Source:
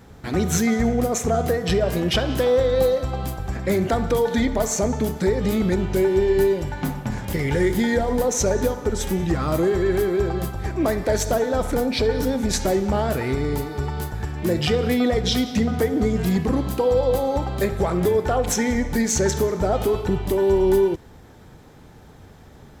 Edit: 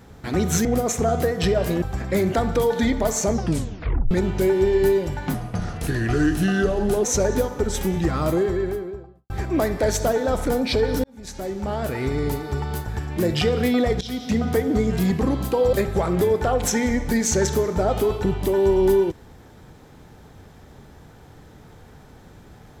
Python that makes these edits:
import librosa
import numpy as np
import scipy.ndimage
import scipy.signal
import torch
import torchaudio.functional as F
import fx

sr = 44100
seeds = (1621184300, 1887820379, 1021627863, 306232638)

y = fx.studio_fade_out(x, sr, start_s=9.44, length_s=1.12)
y = fx.edit(y, sr, fx.cut(start_s=0.65, length_s=0.26),
    fx.cut(start_s=2.08, length_s=1.29),
    fx.tape_stop(start_s=4.85, length_s=0.81),
    fx.speed_span(start_s=6.89, length_s=1.41, speed=0.83),
    fx.fade_in_span(start_s=12.3, length_s=1.18),
    fx.fade_in_from(start_s=15.27, length_s=0.51, curve='qsin', floor_db=-20.0),
    fx.cut(start_s=16.99, length_s=0.58), tone=tone)